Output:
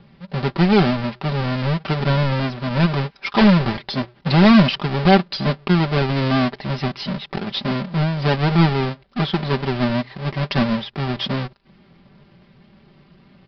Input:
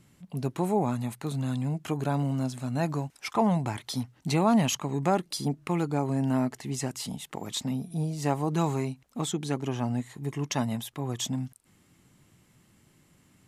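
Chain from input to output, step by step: half-waves squared off; comb 5.1 ms; vibrato 4.6 Hz 36 cents; downsampling 11025 Hz; gain +4.5 dB

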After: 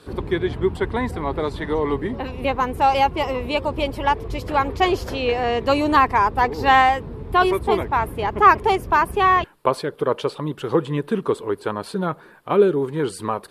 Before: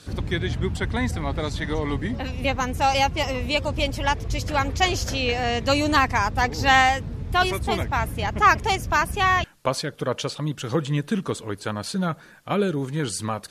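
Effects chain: fifteen-band EQ 100 Hz -3 dB, 400 Hz +12 dB, 1000 Hz +9 dB, 6300 Hz -12 dB; gain -2 dB

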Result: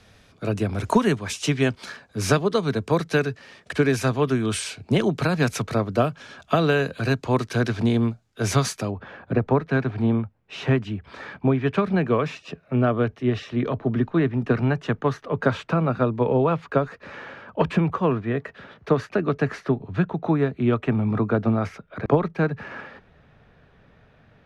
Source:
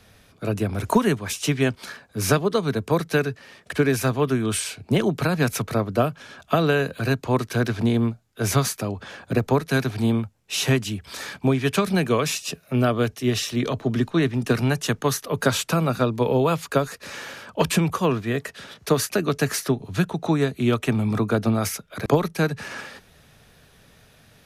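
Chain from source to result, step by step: LPF 7700 Hz 12 dB/oct, from 8.9 s 1900 Hz

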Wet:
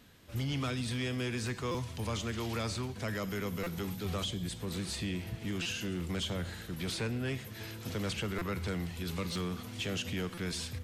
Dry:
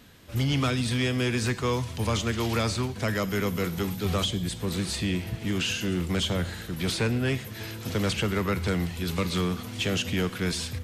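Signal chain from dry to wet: limiter -21.5 dBFS, peak gain reduction 3.5 dB; stuck buffer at 1.71/3.63/5.62/8.38/9.32/10.34, samples 256, times 5; gain -6.5 dB

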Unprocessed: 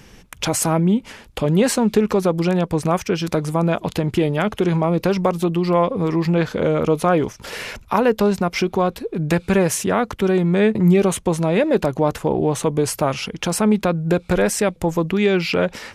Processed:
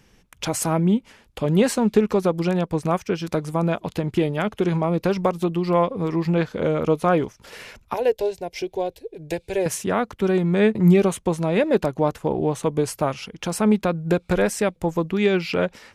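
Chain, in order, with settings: 7.94–9.66 fixed phaser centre 510 Hz, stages 4; upward expander 1.5:1, over -33 dBFS

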